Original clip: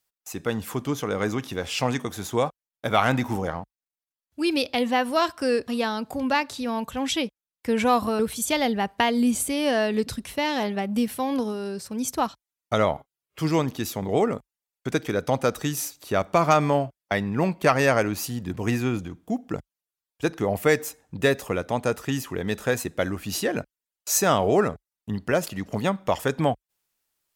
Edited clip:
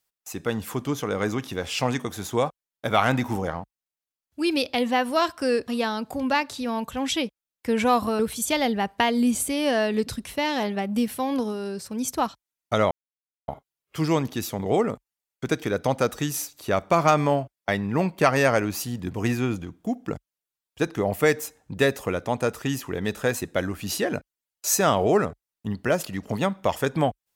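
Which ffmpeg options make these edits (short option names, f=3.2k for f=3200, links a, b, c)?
-filter_complex "[0:a]asplit=2[a][b];[a]atrim=end=12.91,asetpts=PTS-STARTPTS,afade=t=out:st=12.906:d=0.004:c=hsin,apad=pad_dur=0.57[c];[b]atrim=start=12.91,asetpts=PTS-STARTPTS,afade=t=in:d=0.004:c=hsin[d];[c][d]concat=n=2:v=0:a=1"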